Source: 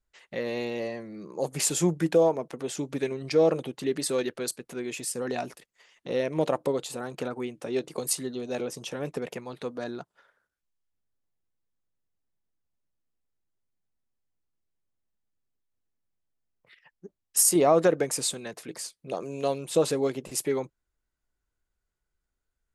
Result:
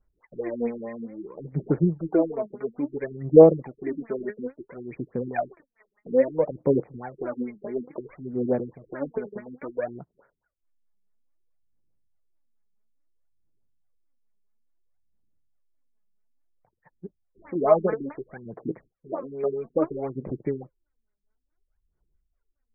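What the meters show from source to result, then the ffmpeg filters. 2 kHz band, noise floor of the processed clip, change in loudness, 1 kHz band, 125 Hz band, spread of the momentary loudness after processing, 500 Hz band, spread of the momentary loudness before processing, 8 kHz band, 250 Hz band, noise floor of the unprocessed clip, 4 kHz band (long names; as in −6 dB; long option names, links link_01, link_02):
−5.0 dB, −79 dBFS, +2.5 dB, −0.5 dB, +4.0 dB, 17 LU, +3.0 dB, 15 LU, below −40 dB, +3.5 dB, −83 dBFS, below −40 dB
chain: -af "aphaser=in_gain=1:out_gain=1:delay=4.9:decay=0.77:speed=0.59:type=sinusoidal,afftfilt=real='re*lt(b*sr/1024,370*pow(2500/370,0.5+0.5*sin(2*PI*4.7*pts/sr)))':imag='im*lt(b*sr/1024,370*pow(2500/370,0.5+0.5*sin(2*PI*4.7*pts/sr)))':win_size=1024:overlap=0.75,volume=-1.5dB"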